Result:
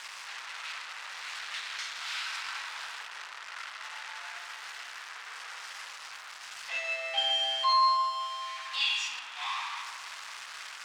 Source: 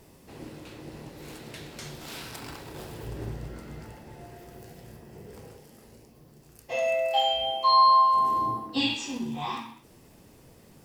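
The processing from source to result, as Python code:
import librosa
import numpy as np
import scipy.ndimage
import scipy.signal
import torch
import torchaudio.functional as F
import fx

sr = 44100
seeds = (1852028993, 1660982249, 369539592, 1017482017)

y = x + 0.5 * 10.0 ** (-27.5 / 20.0) * np.sign(x)
y = scipy.signal.sosfilt(scipy.signal.butter(4, 1200.0, 'highpass', fs=sr, output='sos'), y)
y = fx.echo_wet_lowpass(y, sr, ms=152, feedback_pct=58, hz=1800.0, wet_db=-6.0)
y = fx.cheby_harmonics(y, sr, harmonics=(8,), levels_db=(-43,), full_scale_db=-13.5)
y = fx.air_absorb(y, sr, metres=110.0)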